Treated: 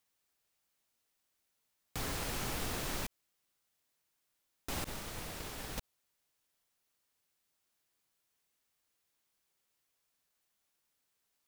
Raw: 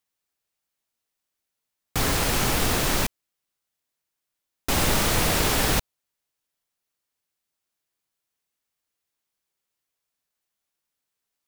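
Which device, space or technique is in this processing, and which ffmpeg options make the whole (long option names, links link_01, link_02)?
de-esser from a sidechain: -filter_complex "[0:a]asettb=1/sr,asplit=3[link_01][link_02][link_03];[link_01]atrim=end=4.844[link_04];[link_02]atrim=start=4.84:end=5.78,asetpts=PTS-STARTPTS,afade=type=in:duration=0.004:curve=qsin,afade=type=out:start_time=0.936:duration=0.004:curve=qsin,agate=range=-33dB:threshold=-9dB:ratio=3:detection=peak[link_05];[link_03]atrim=start=5.776[link_06];[link_04][link_05]acrossfade=duration=0.004:curve1=hsin:curve2=qsin[link_07];[link_07][link_06]acrossfade=duration=0.004:curve1=qsin:curve2=hsin,asplit=2[link_08][link_09];[link_09]highpass=4600,apad=whole_len=505863[link_10];[link_08][link_10]sidechaincompress=threshold=-49dB:ratio=3:attack=0.97:release=33,volume=2dB"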